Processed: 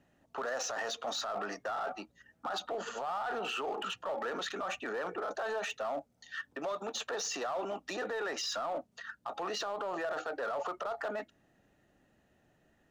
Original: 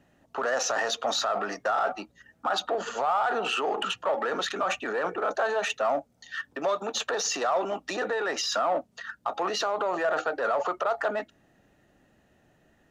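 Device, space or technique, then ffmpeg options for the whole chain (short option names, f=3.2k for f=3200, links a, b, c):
limiter into clipper: -af "alimiter=limit=-21.5dB:level=0:latency=1:release=25,asoftclip=type=hard:threshold=-24dB,volume=-6dB"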